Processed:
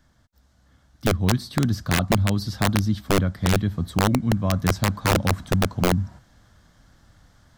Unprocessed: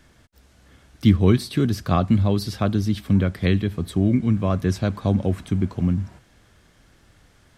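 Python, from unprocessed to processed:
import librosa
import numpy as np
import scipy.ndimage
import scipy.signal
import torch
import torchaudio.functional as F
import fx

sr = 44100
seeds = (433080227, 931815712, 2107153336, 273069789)

y = fx.graphic_eq_15(x, sr, hz=(400, 2500, 10000), db=(-10, -11, -8))
y = fx.rider(y, sr, range_db=10, speed_s=0.5)
y = (np.mod(10.0 ** (12.0 / 20.0) * y + 1.0, 2.0) - 1.0) / 10.0 ** (12.0 / 20.0)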